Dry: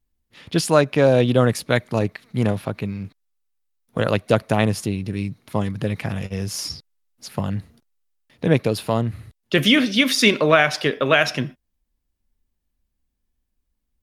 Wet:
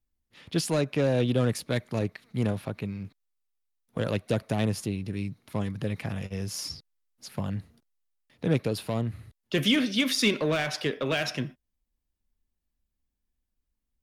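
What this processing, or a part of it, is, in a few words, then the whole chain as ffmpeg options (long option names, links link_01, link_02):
one-band saturation: -filter_complex "[0:a]acrossover=split=440|2700[link_01][link_02][link_03];[link_02]asoftclip=type=tanh:threshold=-23dB[link_04];[link_01][link_04][link_03]amix=inputs=3:normalize=0,volume=-6.5dB"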